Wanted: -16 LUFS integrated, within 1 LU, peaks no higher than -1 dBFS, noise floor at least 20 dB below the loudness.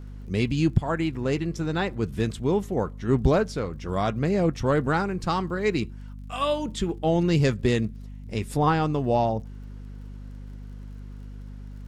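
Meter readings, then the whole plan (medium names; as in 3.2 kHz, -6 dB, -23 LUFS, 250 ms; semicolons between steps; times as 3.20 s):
tick rate 40 per s; hum 50 Hz; highest harmonic 250 Hz; hum level -36 dBFS; loudness -25.5 LUFS; peak level -8.5 dBFS; loudness target -16.0 LUFS
-> de-click; hum notches 50/100/150/200/250 Hz; trim +9.5 dB; peak limiter -1 dBFS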